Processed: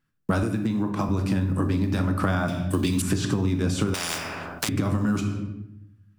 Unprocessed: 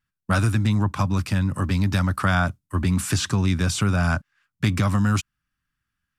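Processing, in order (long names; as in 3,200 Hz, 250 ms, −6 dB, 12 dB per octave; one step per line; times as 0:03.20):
one scale factor per block 7 bits
parametric band 330 Hz +12.5 dB 2.1 octaves
mains-hum notches 60/120/180 Hz
rectangular room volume 210 cubic metres, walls mixed, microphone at 0.6 metres
downward compressor 10 to 1, threshold −20 dBFS, peak gain reduction 12.5 dB
0:00.43–0:01.09: high-pass filter 130 Hz
0:02.48–0:03.02: high shelf with overshoot 2,200 Hz +12 dB, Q 1.5
0:03.94–0:04.69: every bin compressed towards the loudest bin 10 to 1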